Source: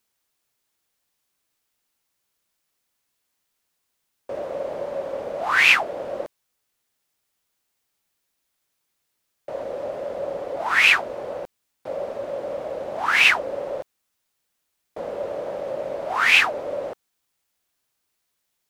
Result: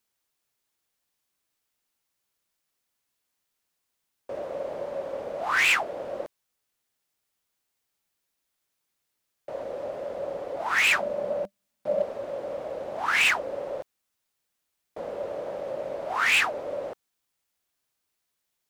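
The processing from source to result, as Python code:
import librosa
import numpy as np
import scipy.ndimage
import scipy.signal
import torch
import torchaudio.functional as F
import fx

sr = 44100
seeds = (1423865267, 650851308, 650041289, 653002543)

y = fx.small_body(x, sr, hz=(200.0, 590.0), ring_ms=80, db=fx.line((10.9, 12.0), (12.01, 15.0)), at=(10.9, 12.01), fade=0.02)
y = np.clip(10.0 ** (13.0 / 20.0) * y, -1.0, 1.0) / 10.0 ** (13.0 / 20.0)
y = y * librosa.db_to_amplitude(-4.0)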